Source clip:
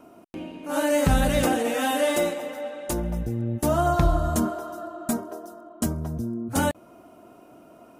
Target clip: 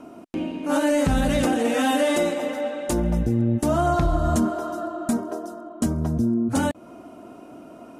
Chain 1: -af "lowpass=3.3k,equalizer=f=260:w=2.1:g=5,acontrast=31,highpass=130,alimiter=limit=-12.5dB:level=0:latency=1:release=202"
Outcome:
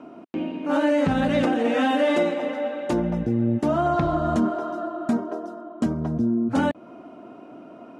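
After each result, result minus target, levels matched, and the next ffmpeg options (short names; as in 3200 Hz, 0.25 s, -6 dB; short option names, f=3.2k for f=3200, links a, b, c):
8000 Hz band -13.5 dB; 125 Hz band -3.0 dB
-af "lowpass=10k,equalizer=f=260:w=2.1:g=5,acontrast=31,highpass=130,alimiter=limit=-12.5dB:level=0:latency=1:release=202"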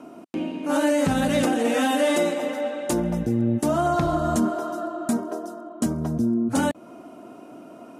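125 Hz band -3.0 dB
-af "lowpass=10k,equalizer=f=260:w=2.1:g=5,acontrast=31,alimiter=limit=-12.5dB:level=0:latency=1:release=202"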